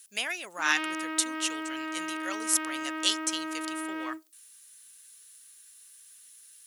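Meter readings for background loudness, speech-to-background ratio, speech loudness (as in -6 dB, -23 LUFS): -35.0 LUFS, 4.0 dB, -31.0 LUFS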